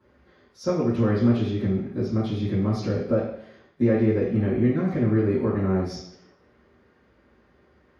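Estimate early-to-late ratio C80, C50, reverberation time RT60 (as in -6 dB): 6.5 dB, 2.5 dB, 0.70 s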